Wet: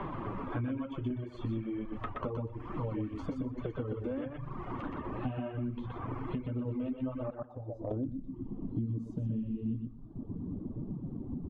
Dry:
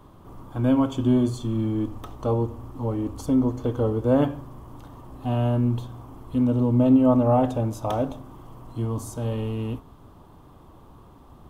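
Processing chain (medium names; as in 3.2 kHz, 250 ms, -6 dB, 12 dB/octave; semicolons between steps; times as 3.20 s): compression 8:1, threshold -30 dBFS, peak gain reduction 16.5 dB; flange 1.1 Hz, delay 4.9 ms, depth 7.2 ms, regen +2%; 7.30–7.91 s: gate -31 dBFS, range -16 dB; feedback delay 122 ms, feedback 24%, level -3 dB; low-pass sweep 2.2 kHz -> 240 Hz, 7.28–8.16 s; reverb removal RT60 0.86 s; dynamic bell 830 Hz, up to -6 dB, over -57 dBFS, Q 2.1; three bands compressed up and down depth 100%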